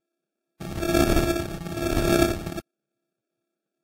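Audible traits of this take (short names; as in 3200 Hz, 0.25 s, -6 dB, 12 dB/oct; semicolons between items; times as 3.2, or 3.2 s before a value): a buzz of ramps at a fixed pitch in blocks of 128 samples; phasing stages 12, 2.4 Hz, lowest notch 480–1100 Hz; aliases and images of a low sample rate 1000 Hz, jitter 0%; Vorbis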